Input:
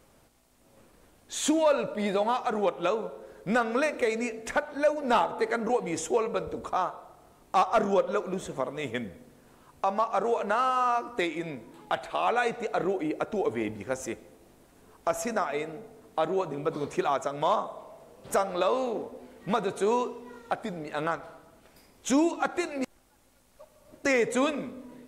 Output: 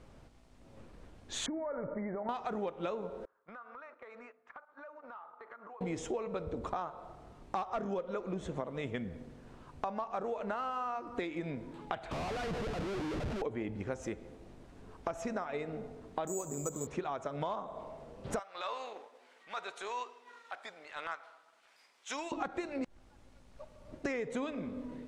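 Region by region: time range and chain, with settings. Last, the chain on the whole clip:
1.46–2.29 s: expander -34 dBFS + compression, threshold -34 dBFS + brick-wall FIR low-pass 2.3 kHz
3.25–5.81 s: gate -35 dBFS, range -13 dB + band-pass filter 1.2 kHz, Q 3.7 + compression 5:1, threshold -48 dBFS
12.11–13.42 s: bass shelf 100 Hz +9 dB + compression 3:1, threshold -34 dBFS + Schmitt trigger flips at -45 dBFS
16.27–16.87 s: treble shelf 3.2 kHz -11.5 dB + careless resampling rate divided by 6×, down none, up zero stuff
18.39–22.32 s: high-pass 1.2 kHz + transient shaper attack -9 dB, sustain -3 dB
whole clip: Bessel low-pass 4.7 kHz, order 2; bass shelf 180 Hz +9.5 dB; compression 6:1, threshold -34 dBFS

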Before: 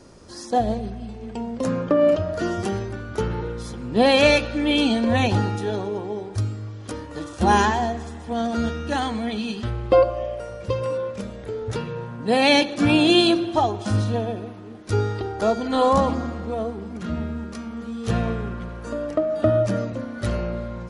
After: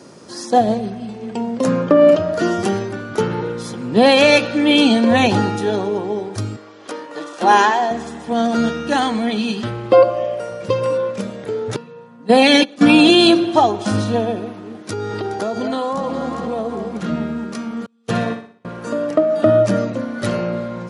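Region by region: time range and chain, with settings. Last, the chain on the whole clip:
6.56–7.91 s: high-pass 410 Hz + treble shelf 7.2 kHz -11 dB
11.76–13.09 s: gate -22 dBFS, range -16 dB + comb 4.1 ms, depth 60%
14.90–17.07 s: echo whose repeats swap between lows and highs 204 ms, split 890 Hz, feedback 58%, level -9.5 dB + compression 12:1, threshold -24 dBFS
17.86–18.65 s: gate -25 dBFS, range -35 dB + bass shelf 380 Hz -4 dB + flutter echo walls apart 10.5 m, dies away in 0.46 s
whole clip: high-pass 130 Hz 24 dB/octave; loudness maximiser +8 dB; trim -1 dB

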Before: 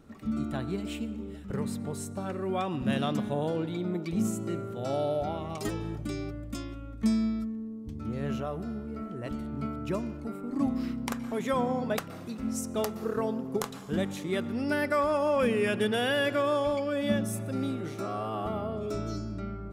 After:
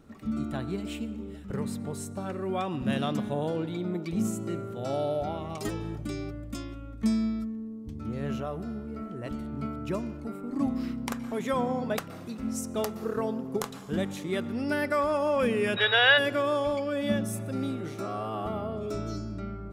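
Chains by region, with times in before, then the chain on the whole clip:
15.76–16.17 s: FFT filter 120 Hz 0 dB, 170 Hz -29 dB, 510 Hz +2 dB, 1.6 kHz +13 dB, 4.1 kHz +8 dB, 8.4 kHz -18 dB + whistle 3.8 kHz -30 dBFS
whole clip: none

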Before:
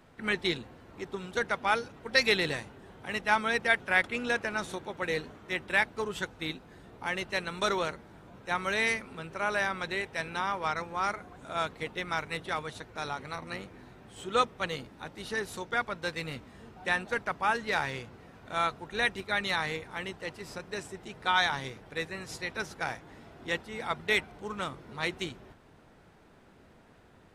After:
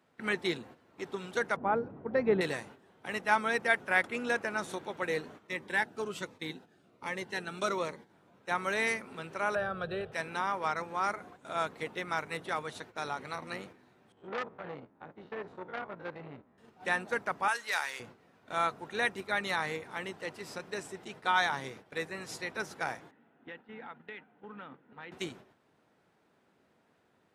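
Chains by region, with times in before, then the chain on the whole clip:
1.56–2.41 s: low-pass 1 kHz + bass shelf 330 Hz +10 dB
5.47–8.10 s: high-pass 88 Hz + treble shelf 8.9 kHz -4 dB + Shepard-style phaser falling 1.3 Hz
9.55–10.12 s: tilt EQ -3.5 dB/octave + static phaser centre 1.4 kHz, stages 8 + three bands compressed up and down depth 40%
14.12–16.58 s: spectrogram pixelated in time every 50 ms + low-pass 1.3 kHz + transformer saturation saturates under 2.5 kHz
17.48–18.00 s: high-pass 1.1 kHz 6 dB/octave + tilt EQ +2.5 dB/octave
23.11–25.12 s: cabinet simulation 180–2500 Hz, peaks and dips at 250 Hz +4 dB, 370 Hz -8 dB, 630 Hz -8 dB, 1.1 kHz -8 dB, 2.2 kHz -7 dB + compression, threshold -41 dBFS
whole clip: Bessel high-pass 180 Hz, order 2; gate -49 dBFS, range -10 dB; dynamic bell 3.5 kHz, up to -6 dB, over -44 dBFS, Q 0.94

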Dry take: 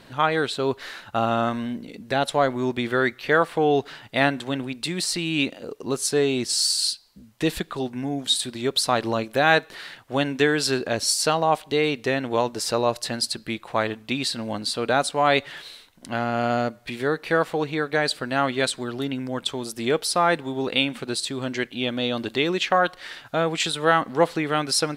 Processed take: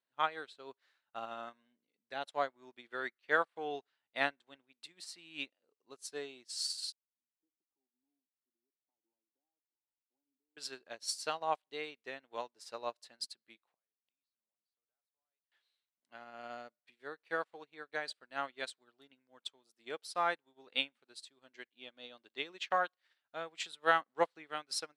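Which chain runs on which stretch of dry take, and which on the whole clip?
6.92–10.57 s: tilt EQ +2 dB/octave + compression 5:1, threshold -32 dBFS + cascade formant filter u
13.73–15.52 s: compression 4:1, threshold -28 dBFS + inverted gate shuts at -34 dBFS, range -25 dB
whole clip: frequency weighting A; upward expansion 2.5:1, over -39 dBFS; trim -7.5 dB

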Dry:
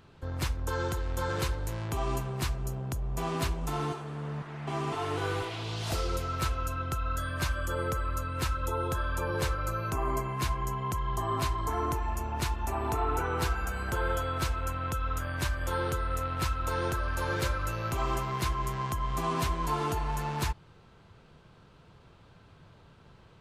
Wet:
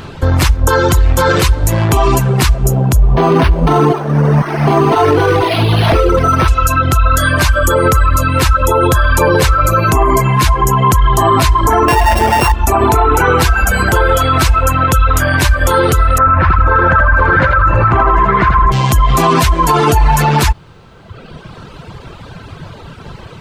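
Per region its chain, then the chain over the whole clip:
3.16–6.48 s: peaking EQ 390 Hz +6 dB 2.6 oct + decimation joined by straight lines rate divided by 6×
11.88–12.52 s: sorted samples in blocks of 16 samples + peaking EQ 720 Hz +11.5 dB 2.2 oct
16.18–18.72 s: resonant low-pass 1.5 kHz, resonance Q 2.3 + feedback delay 81 ms, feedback 51%, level -4 dB
whole clip: reverb removal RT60 1.4 s; loudness maximiser +29 dB; trim -1 dB

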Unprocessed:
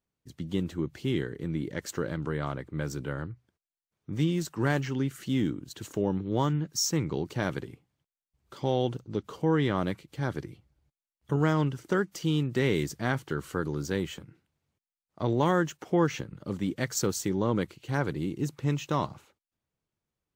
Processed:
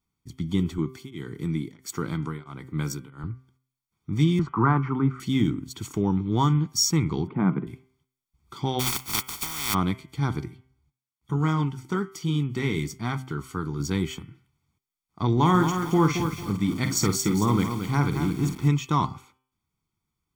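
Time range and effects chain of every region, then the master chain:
0.78–3.24 s: high-pass 110 Hz + treble shelf 6.7 kHz +8 dB + tremolo of two beating tones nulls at 1.5 Hz
4.39–5.20 s: resonant low-pass 1.2 kHz, resonance Q 2.9 + three bands compressed up and down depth 40%
7.27–7.67 s: resonant low shelf 120 Hz -13.5 dB, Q 3 + upward compressor, threshold -39 dBFS + Gaussian low-pass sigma 4.5 samples
8.79–9.73 s: spectral contrast reduction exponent 0.11 + compressor with a negative ratio -30 dBFS, ratio -0.5
10.48–13.80 s: high-pass 49 Hz + flange 1.1 Hz, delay 4.1 ms, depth 9.5 ms, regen -66%
15.32–18.68 s: doubling 49 ms -9 dB + bit-crushed delay 224 ms, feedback 35%, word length 7-bit, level -7 dB
whole clip: comb 0.9 ms, depth 82%; de-hum 129.7 Hz, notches 26; trim +2.5 dB

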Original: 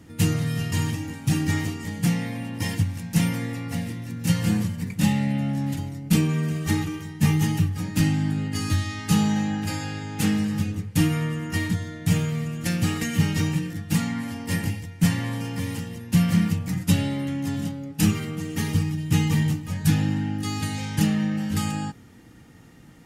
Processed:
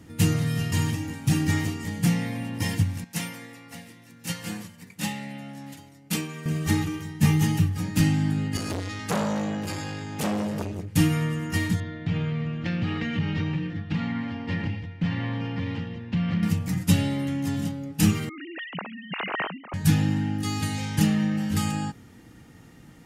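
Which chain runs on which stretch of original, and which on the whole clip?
3.04–6.46 s: high-pass 550 Hz 6 dB/octave + upward expansion, over -39 dBFS
8.57–10.95 s: hum notches 50/100 Hz + transformer saturation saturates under 1.3 kHz
11.80–16.43 s: low-pass 3.7 kHz 24 dB/octave + compression 2.5:1, threshold -24 dBFS
18.29–19.74 s: formants replaced by sine waves + high-pass 1.4 kHz 6 dB/octave
whole clip: none

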